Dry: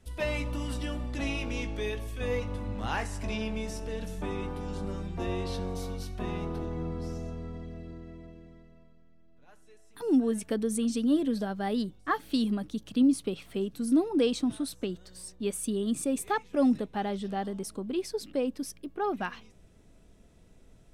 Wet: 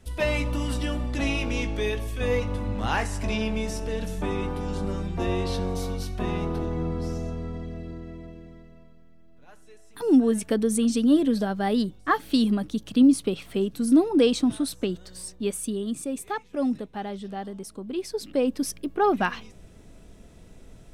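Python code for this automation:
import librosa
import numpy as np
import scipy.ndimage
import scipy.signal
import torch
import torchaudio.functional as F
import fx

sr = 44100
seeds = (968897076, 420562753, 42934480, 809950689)

y = fx.gain(x, sr, db=fx.line((15.25, 6.0), (16.01, -1.5), (17.75, -1.5), (18.69, 9.0)))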